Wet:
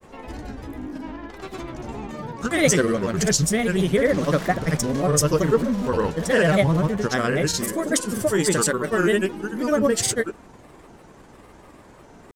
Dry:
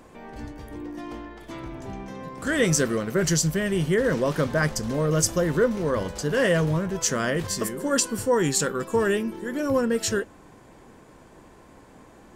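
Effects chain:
granular cloud, grains 20 per second, pitch spread up and down by 3 semitones
level +4.5 dB

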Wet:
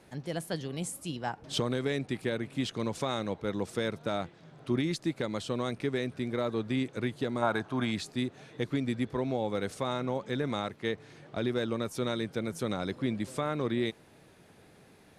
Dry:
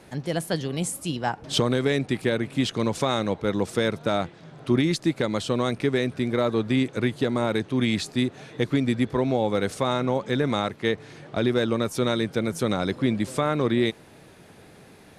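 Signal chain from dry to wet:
gain on a spectral selection 0:07.42–0:07.91, 590–1,700 Hz +10 dB
level −8 dB

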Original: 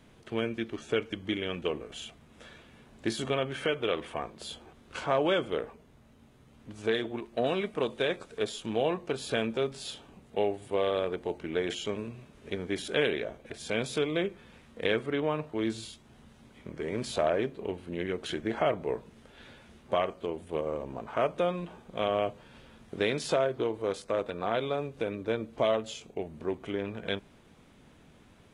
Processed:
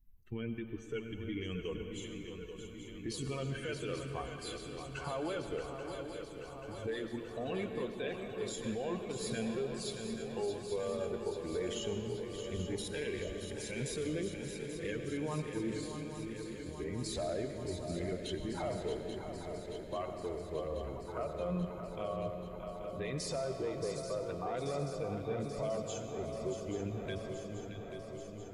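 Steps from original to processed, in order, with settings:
spectral dynamics exaggerated over time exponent 2
low-shelf EQ 71 Hz +11 dB
brickwall limiter −36 dBFS, peak gain reduction 17.5 dB
parametric band 3,500 Hz −4.5 dB 0.54 octaves
feedback echo with a long and a short gap by turns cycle 834 ms, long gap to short 3 to 1, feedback 69%, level −8.5 dB
on a send at −7 dB: convolution reverb RT60 3.1 s, pre-delay 77 ms
on the sum: level +5.5 dB

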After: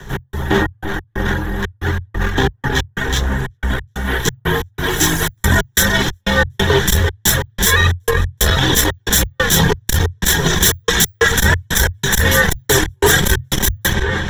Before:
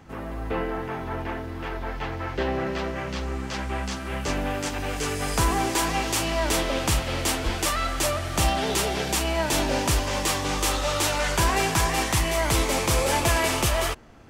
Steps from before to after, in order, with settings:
lower of the sound and its delayed copy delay 0.53 ms
reverb reduction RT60 1.9 s
mains-hum notches 50/100/150 Hz
on a send: delay with a low-pass on its return 343 ms, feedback 70%, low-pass 2,800 Hz, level −8 dB
on the sum: gate pattern "x.xx.x.xxx." 91 BPM −60 dB
EQ curve with evenly spaced ripples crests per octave 1.1, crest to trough 9 dB
frequency shifter −130 Hz
high-shelf EQ 11,000 Hz +6 dB
notch filter 2,100 Hz, Q 11
boost into a limiter +16.5 dB
saturating transformer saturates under 100 Hz

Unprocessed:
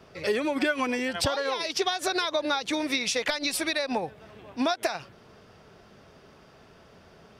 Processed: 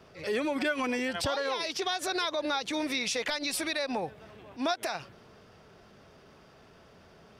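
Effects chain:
transient designer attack −7 dB, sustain +1 dB
level −2 dB

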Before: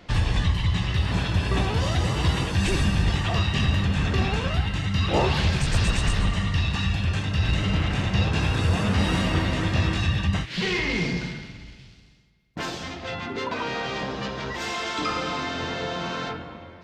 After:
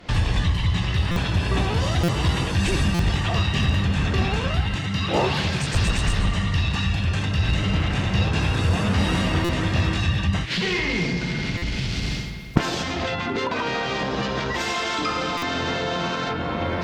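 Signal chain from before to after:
camcorder AGC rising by 78 dB per second
0:04.75–0:05.75: high-pass filter 110 Hz 12 dB per octave
asymmetric clip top −16 dBFS
buffer that repeats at 0:01.11/0:02.03/0:02.94/0:09.44/0:11.57/0:15.37, samples 256, times 8
level +1.5 dB

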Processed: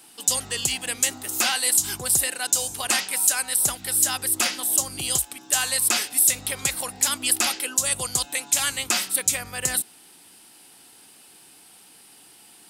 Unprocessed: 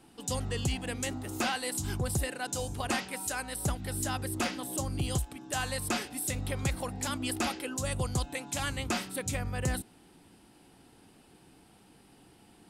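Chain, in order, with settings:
spectral tilt +4 dB per octave
level +4.5 dB

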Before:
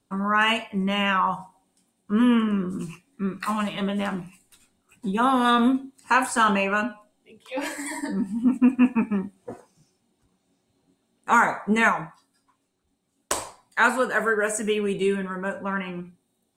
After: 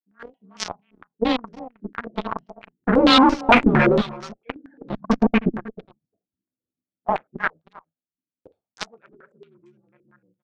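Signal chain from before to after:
adaptive Wiener filter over 41 samples
source passing by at 0:05.49, 33 m/s, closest 4.4 metres
high-pass filter 100 Hz 12 dB per octave
low-shelf EQ 160 Hz +3 dB
leveller curve on the samples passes 5
automatic gain control gain up to 15.5 dB
tube saturation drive 18 dB, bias 0.7
time stretch by overlap-add 0.63×, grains 28 ms
single-tap delay 315 ms −18.5 dB
low-pass on a step sequencer 8.8 Hz 310–5,700 Hz
level +5.5 dB

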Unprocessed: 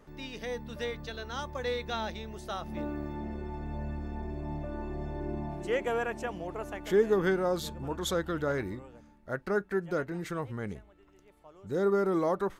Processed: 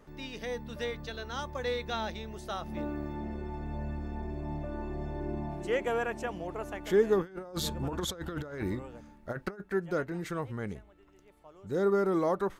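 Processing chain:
0:07.21–0:09.60: compressor whose output falls as the input rises −35 dBFS, ratio −0.5

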